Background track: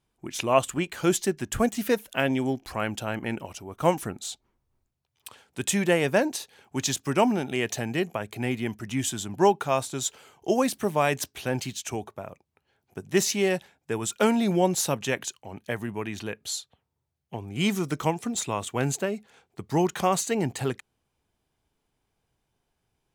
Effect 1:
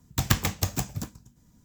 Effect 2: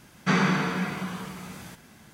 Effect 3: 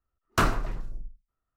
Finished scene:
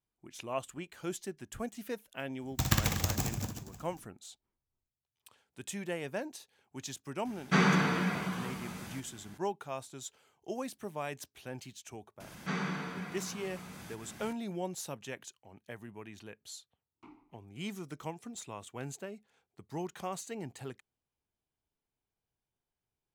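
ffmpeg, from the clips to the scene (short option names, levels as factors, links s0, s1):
-filter_complex "[2:a]asplit=2[s0][s1];[0:a]volume=0.178[s2];[1:a]aecho=1:1:60|138|239.4|371.2|542.6:0.631|0.398|0.251|0.158|0.1[s3];[s1]acompressor=mode=upward:threshold=0.0501:ratio=4:attack=1.5:release=322:knee=2.83:detection=peak[s4];[3:a]asplit=3[s5][s6][s7];[s5]bandpass=f=300:t=q:w=8,volume=1[s8];[s6]bandpass=f=870:t=q:w=8,volume=0.501[s9];[s7]bandpass=f=2240:t=q:w=8,volume=0.355[s10];[s8][s9][s10]amix=inputs=3:normalize=0[s11];[s3]atrim=end=1.64,asetpts=PTS-STARTPTS,volume=0.531,afade=t=in:d=0.004:c=hsin,afade=t=out:st=1.636:d=0.004:c=hsin,adelay=2410[s12];[s0]atrim=end=2.13,asetpts=PTS-STARTPTS,volume=0.708,afade=t=in:d=0.004:c=hsin,afade=t=out:st=2.126:d=0.004:c=hsin,adelay=7250[s13];[s4]atrim=end=2.13,asetpts=PTS-STARTPTS,volume=0.237,afade=t=in:d=0.004:c=hsin,afade=t=out:st=2.126:d=0.004:c=hsin,adelay=538020S[s14];[s11]atrim=end=1.56,asetpts=PTS-STARTPTS,volume=0.126,afade=t=in:d=0.004:c=hsin,afade=t=out:st=1.556:d=0.004:c=hsin,adelay=16650[s15];[s2][s12][s13][s14][s15]amix=inputs=5:normalize=0"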